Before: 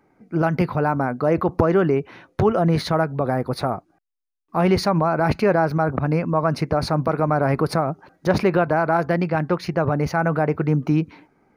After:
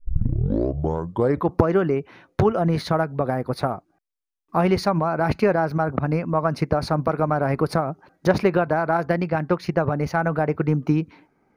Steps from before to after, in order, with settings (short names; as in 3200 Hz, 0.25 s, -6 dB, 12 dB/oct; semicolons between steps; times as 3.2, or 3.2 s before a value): tape start at the beginning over 1.53 s; transient shaper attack +5 dB, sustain -1 dB; gain -3 dB